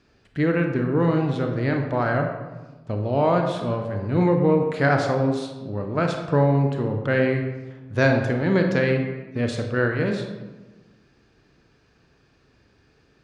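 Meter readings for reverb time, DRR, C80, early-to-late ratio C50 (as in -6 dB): 1.2 s, 3.0 dB, 7.5 dB, 5.0 dB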